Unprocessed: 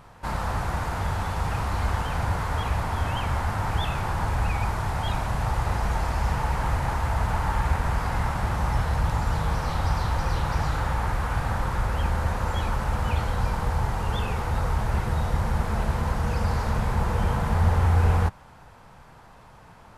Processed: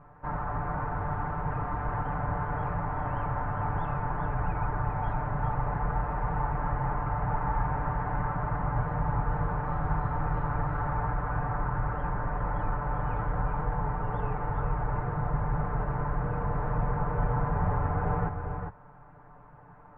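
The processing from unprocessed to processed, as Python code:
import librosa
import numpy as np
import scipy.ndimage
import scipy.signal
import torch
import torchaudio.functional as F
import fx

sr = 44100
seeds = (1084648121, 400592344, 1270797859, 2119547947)

p1 = scipy.signal.sosfilt(scipy.signal.butter(4, 1600.0, 'lowpass', fs=sr, output='sos'), x)
p2 = p1 + 0.94 * np.pad(p1, (int(6.8 * sr / 1000.0), 0))[:len(p1)]
p3 = p2 + fx.echo_single(p2, sr, ms=402, db=-6.5, dry=0)
y = F.gain(torch.from_numpy(p3), -6.0).numpy()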